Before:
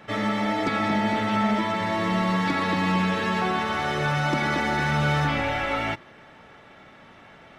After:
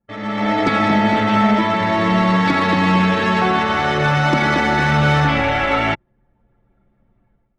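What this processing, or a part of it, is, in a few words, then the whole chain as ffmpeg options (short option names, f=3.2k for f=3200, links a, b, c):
voice memo with heavy noise removal: -af "anlmdn=39.8,dynaudnorm=f=110:g=7:m=16dB,volume=-4dB"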